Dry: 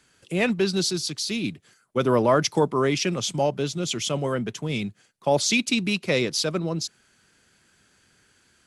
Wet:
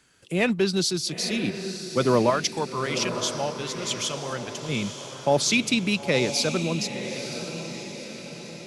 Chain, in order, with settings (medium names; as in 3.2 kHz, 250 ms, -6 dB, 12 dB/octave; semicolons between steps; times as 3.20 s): 2.30–4.69 s: peaking EQ 260 Hz -11.5 dB 2.8 oct; echo that smears into a reverb 945 ms, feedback 51%, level -9 dB